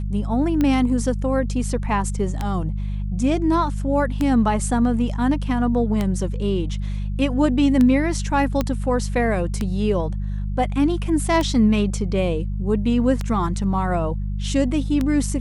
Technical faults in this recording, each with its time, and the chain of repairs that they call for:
hum 50 Hz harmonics 4 -25 dBFS
tick 33 1/3 rpm -10 dBFS
8.61 s: pop -8 dBFS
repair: de-click; de-hum 50 Hz, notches 4

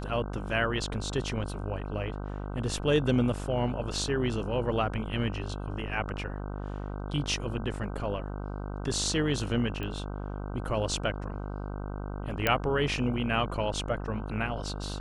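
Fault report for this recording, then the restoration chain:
buzz 50 Hz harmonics 31 -36 dBFS
9.83 s: pop -23 dBFS
12.47 s: pop -10 dBFS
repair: de-click; de-hum 50 Hz, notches 31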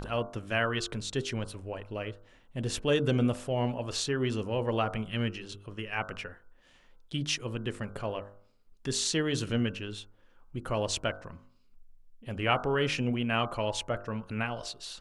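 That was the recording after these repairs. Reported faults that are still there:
nothing left

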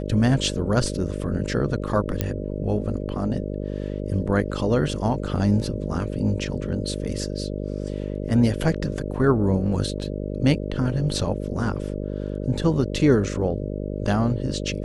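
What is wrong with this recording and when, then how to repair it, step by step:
buzz 50 Hz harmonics 12 -29 dBFS
2.21 s: pop -9 dBFS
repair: de-click; de-hum 50 Hz, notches 12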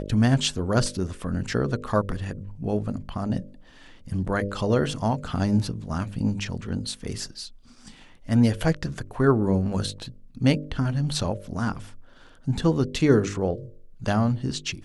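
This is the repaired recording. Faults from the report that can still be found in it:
nothing left

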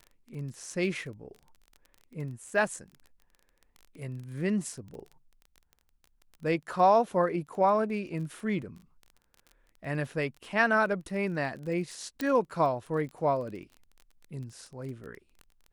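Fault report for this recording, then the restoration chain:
crackle 22 per s -39 dBFS
12.21 s: pop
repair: de-click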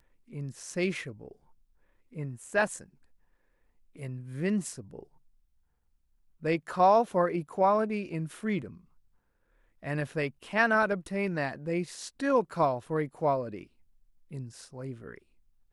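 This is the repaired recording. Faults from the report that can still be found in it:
nothing left

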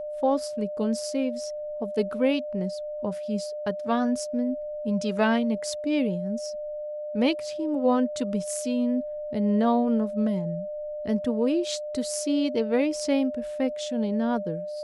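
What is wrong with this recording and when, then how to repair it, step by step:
whine 600 Hz -31 dBFS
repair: band-stop 600 Hz, Q 30

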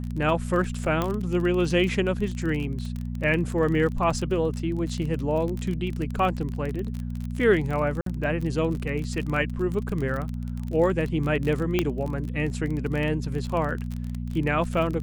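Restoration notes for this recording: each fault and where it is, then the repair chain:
crackle 29 per s -29 dBFS
hum 60 Hz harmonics 4 -31 dBFS
1.02 s: pop -12 dBFS
8.01–8.06 s: dropout 53 ms
11.79 s: pop -9 dBFS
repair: de-click; de-hum 60 Hz, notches 4; interpolate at 8.01 s, 53 ms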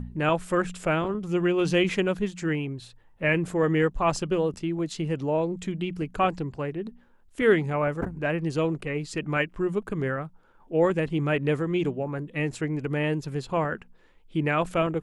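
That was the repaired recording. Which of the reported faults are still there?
nothing left

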